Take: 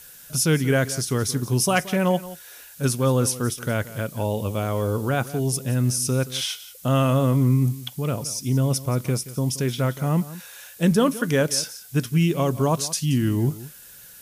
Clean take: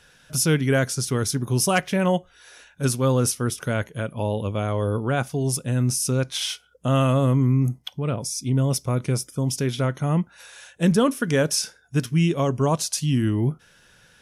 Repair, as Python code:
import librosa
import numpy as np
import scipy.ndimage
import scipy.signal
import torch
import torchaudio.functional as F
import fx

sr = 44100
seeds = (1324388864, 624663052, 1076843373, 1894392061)

y = fx.noise_reduce(x, sr, print_start_s=13.7, print_end_s=14.2, reduce_db=11.0)
y = fx.fix_echo_inverse(y, sr, delay_ms=176, level_db=-16.5)